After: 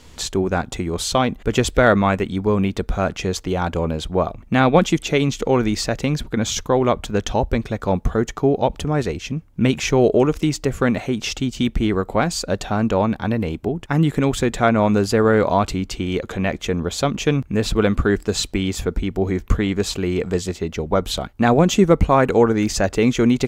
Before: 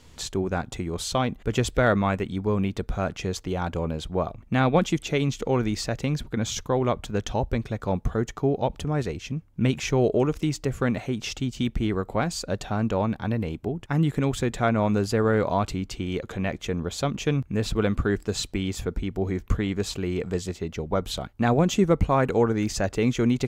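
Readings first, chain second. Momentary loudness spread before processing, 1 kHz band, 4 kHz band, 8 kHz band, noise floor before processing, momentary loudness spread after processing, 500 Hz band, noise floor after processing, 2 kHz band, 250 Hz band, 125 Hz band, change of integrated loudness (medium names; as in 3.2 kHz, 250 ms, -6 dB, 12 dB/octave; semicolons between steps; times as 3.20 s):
8 LU, +7.0 dB, +7.0 dB, +7.0 dB, -50 dBFS, 8 LU, +7.0 dB, -44 dBFS, +7.0 dB, +6.5 dB, +4.0 dB, +6.5 dB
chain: peaking EQ 120 Hz -4.5 dB 0.74 oct; trim +7 dB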